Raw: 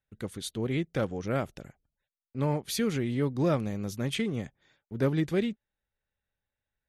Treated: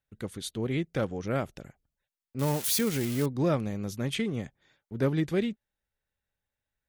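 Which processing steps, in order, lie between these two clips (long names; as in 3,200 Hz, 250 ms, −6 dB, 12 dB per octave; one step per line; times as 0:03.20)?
0:02.39–0:03.26: spike at every zero crossing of −23 dBFS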